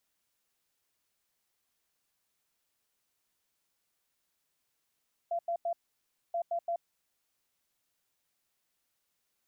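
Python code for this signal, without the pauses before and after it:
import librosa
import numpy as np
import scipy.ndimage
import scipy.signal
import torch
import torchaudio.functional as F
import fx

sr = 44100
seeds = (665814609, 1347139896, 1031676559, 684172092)

y = fx.beep_pattern(sr, wave='sine', hz=683.0, on_s=0.08, off_s=0.09, beeps=3, pause_s=0.61, groups=2, level_db=-29.0)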